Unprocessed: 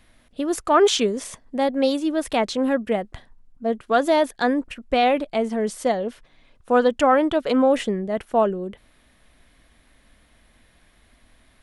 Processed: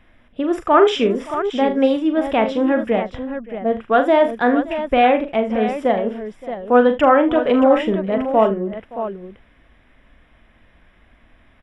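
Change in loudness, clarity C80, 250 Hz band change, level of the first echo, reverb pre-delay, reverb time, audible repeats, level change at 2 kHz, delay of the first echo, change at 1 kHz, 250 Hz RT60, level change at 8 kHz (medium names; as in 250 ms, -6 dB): +4.0 dB, no reverb, +4.5 dB, -8.5 dB, no reverb, no reverb, 4, +4.5 dB, 41 ms, +4.5 dB, no reverb, under -10 dB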